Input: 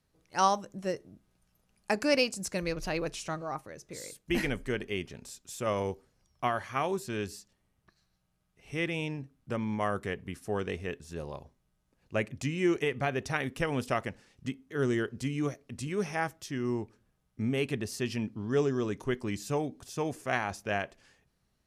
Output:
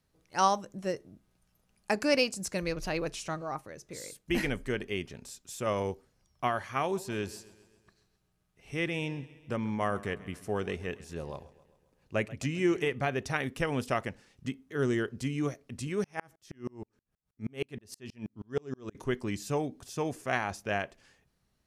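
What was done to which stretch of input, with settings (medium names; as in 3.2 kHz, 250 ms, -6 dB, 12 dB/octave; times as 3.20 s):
6.82–12.92 s: modulated delay 133 ms, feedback 56%, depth 58 cents, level -19 dB
16.04–18.95 s: sawtooth tremolo in dB swelling 6.3 Hz, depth 37 dB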